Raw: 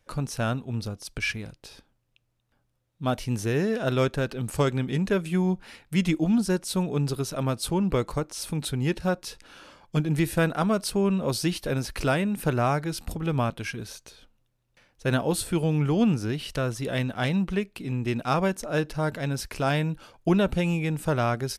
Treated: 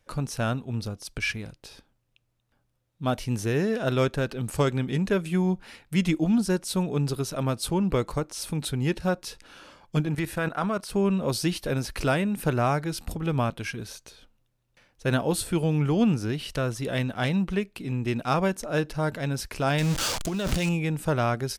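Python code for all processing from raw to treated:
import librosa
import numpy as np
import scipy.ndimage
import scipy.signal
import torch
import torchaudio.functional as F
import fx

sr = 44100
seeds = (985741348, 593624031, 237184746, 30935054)

y = fx.chain(x, sr, fx.peak_eq(hz=1300.0, db=7.0, octaves=2.2),
    fx.level_steps(step_db=13), at=(10.06, 10.9))
y = fx.chain(y, sr, fx.zero_step(step_db=-30.0),
    fx.peak_eq(hz=6200.0, db=10.5, octaves=1.9),
    fx.over_compress(threshold_db=-25.0, ratio=-1.0), at=(19.78, 20.69))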